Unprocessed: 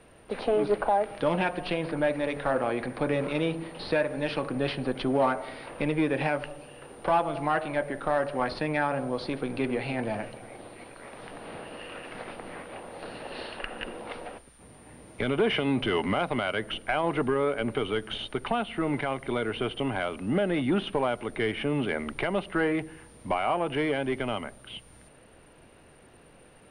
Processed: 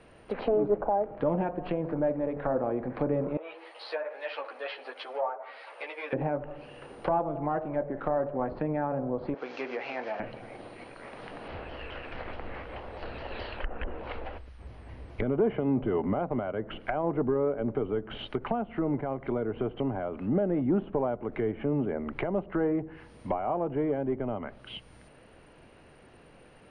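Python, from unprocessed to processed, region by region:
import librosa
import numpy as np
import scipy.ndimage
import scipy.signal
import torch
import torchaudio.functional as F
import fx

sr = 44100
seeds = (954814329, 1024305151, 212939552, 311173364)

y = fx.chain(x, sr, fx.highpass(hz=540.0, slope=24),
    fx.ensemble(), at=(3.37, 6.13))
y = fx.chain(y, sr, fx.delta_mod(bps=32000, step_db=-38.5),
    fx.highpass(hz=520.0, slope=12), at=(9.34, 10.2))
y = fx.chain(y, sr, fx.lowpass(hz=5500.0, slope=12),
    fx.low_shelf_res(hz=110.0, db=12.0, q=1.5),
    fx.vibrato_shape(shape='saw_down', rate_hz=4.7, depth_cents=160.0), at=(11.48, 15.22))
y = scipy.signal.sosfilt(scipy.signal.butter(2, 6300.0, 'lowpass', fs=sr, output='sos'), y)
y = fx.notch(y, sr, hz=3600.0, q=17.0)
y = fx.env_lowpass_down(y, sr, base_hz=760.0, full_db=-26.5)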